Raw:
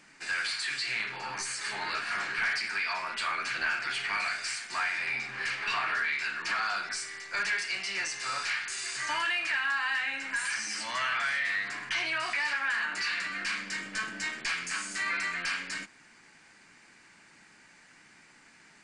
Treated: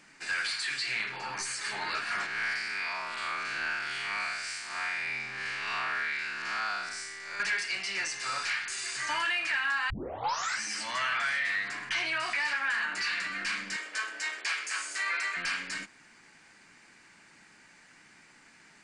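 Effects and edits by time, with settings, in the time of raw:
2.26–7.40 s: spectral blur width 153 ms
9.90 s: tape start 0.71 s
13.76–15.37 s: high-pass 400 Hz 24 dB/octave

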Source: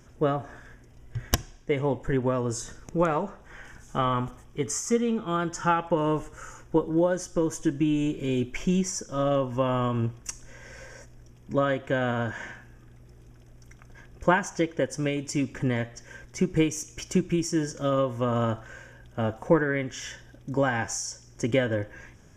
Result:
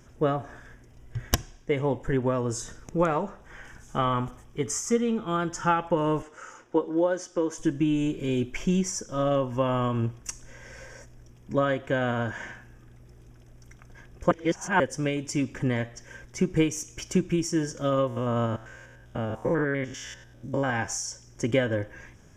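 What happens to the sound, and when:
6.22–7.58 s: three-band isolator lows -21 dB, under 220 Hz, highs -15 dB, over 7.2 kHz
14.31–14.80 s: reverse
18.07–20.70 s: spectrogram pixelated in time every 100 ms

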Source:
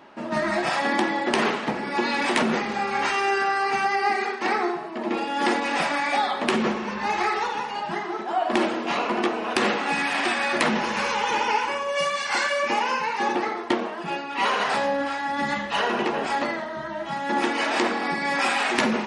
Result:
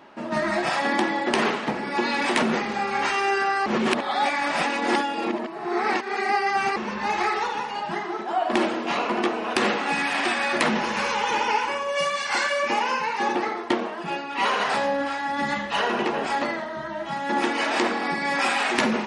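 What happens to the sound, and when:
3.66–6.76 s: reverse

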